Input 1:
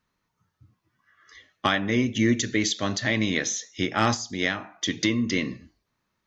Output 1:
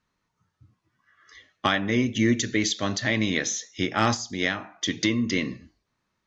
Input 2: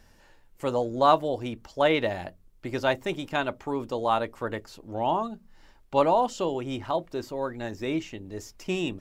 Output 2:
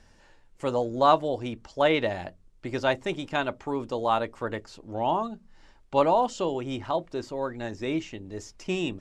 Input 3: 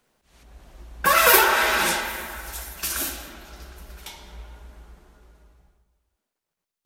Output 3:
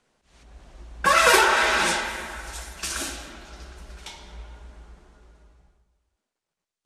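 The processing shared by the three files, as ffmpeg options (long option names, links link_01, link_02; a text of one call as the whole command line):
ffmpeg -i in.wav -af "lowpass=frequency=9200:width=0.5412,lowpass=frequency=9200:width=1.3066" out.wav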